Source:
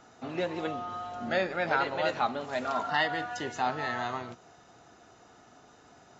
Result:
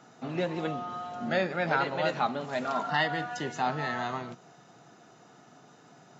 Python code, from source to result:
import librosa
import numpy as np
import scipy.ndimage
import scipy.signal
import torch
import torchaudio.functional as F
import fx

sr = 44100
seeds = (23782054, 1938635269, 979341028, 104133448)

y = fx.low_shelf_res(x, sr, hz=100.0, db=-13.0, q=3.0)